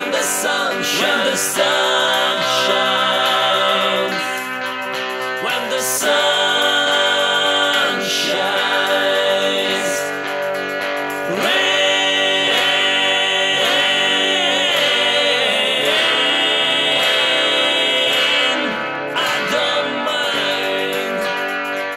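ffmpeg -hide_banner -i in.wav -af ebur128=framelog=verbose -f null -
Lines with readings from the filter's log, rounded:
Integrated loudness:
  I:         -15.5 LUFS
  Threshold: -25.4 LUFS
Loudness range:
  LRA:         3.6 LU
  Threshold: -35.3 LUFS
  LRA low:   -17.3 LUFS
  LRA high:  -13.7 LUFS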